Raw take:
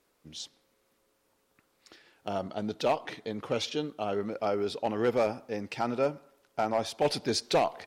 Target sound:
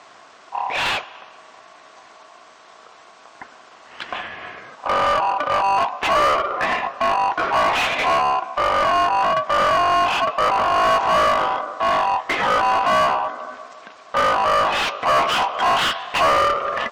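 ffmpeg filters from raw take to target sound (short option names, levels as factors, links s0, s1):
-filter_complex "[0:a]asplit=2[s0][s1];[s1]alimiter=level_in=1.26:limit=0.0631:level=0:latency=1:release=217,volume=0.794,volume=1[s2];[s0][s2]amix=inputs=2:normalize=0,aeval=exprs='val(0)*sin(2*PI*1900*n/s)':c=same,asetrate=20506,aresample=44100,asplit=2[s3][s4];[s4]highpass=f=720:p=1,volume=25.1,asoftclip=type=tanh:threshold=0.188[s5];[s3][s5]amix=inputs=2:normalize=0,lowpass=f=2400:p=1,volume=0.501,volume=1.68"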